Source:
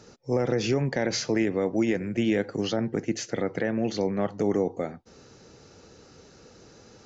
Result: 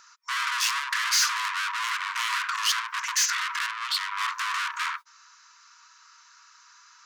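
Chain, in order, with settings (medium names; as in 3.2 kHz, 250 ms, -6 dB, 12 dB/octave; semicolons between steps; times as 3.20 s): gate -44 dBFS, range -24 dB; peaking EQ 3.1 kHz -11.5 dB 2.4 oct; in parallel at +1 dB: compression, threshold -34 dBFS, peak gain reduction 13.5 dB; 3.66–4.21 s: on the sum: static phaser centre 1.8 kHz, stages 6; overdrive pedal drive 32 dB, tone 4.4 kHz, clips at -11.5 dBFS; saturation -23 dBFS, distortion -12 dB; brick-wall FIR high-pass 930 Hz; 1.98–2.38 s: doubling 32 ms -5.5 dB; trim +5 dB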